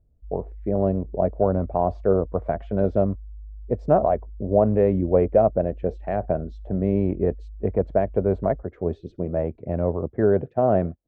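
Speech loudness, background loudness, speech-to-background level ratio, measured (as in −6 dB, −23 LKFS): −23.5 LKFS, −42.5 LKFS, 19.0 dB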